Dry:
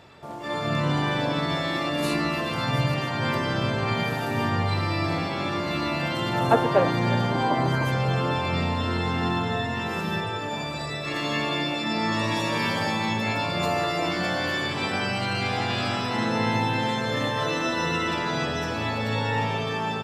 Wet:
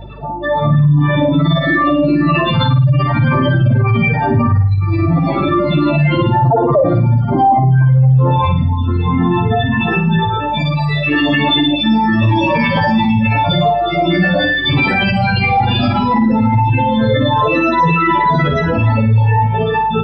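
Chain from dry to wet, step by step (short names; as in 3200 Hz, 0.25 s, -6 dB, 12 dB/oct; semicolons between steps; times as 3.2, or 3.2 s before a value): spectral contrast raised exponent 3; reverb removal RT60 0.84 s; de-hum 405.9 Hz, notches 30; hum 50 Hz, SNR 21 dB; flutter echo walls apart 9.2 m, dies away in 0.44 s; maximiser +20 dB; gain -4 dB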